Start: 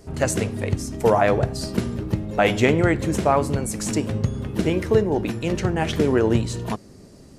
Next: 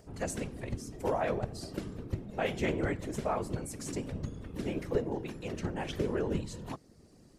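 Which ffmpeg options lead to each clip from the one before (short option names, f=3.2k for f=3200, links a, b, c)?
-af "acompressor=mode=upward:threshold=-41dB:ratio=2.5,afftfilt=real='hypot(re,im)*cos(2*PI*random(0))':imag='hypot(re,im)*sin(2*PI*random(1))':win_size=512:overlap=0.75,volume=-7.5dB"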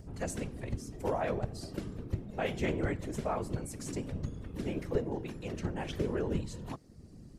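-filter_complex "[0:a]lowshelf=f=170:g=4,acrossover=split=270[a][b];[a]acompressor=mode=upward:threshold=-39dB:ratio=2.5[c];[c][b]amix=inputs=2:normalize=0,volume=-2dB"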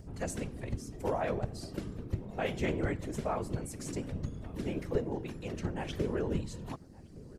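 -filter_complex "[0:a]asplit=2[a][b];[b]adelay=1166,volume=-21dB,highshelf=f=4k:g=-26.2[c];[a][c]amix=inputs=2:normalize=0"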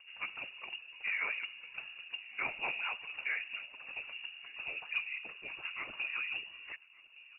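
-af "lowshelf=f=370:g=-10.5,lowpass=f=2.5k:t=q:w=0.5098,lowpass=f=2.5k:t=q:w=0.6013,lowpass=f=2.5k:t=q:w=0.9,lowpass=f=2.5k:t=q:w=2.563,afreqshift=-2900"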